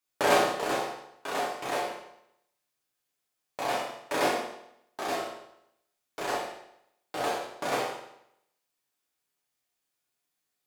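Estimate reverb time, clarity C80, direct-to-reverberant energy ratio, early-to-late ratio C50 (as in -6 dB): 0.80 s, 6.0 dB, -6.0 dB, 2.5 dB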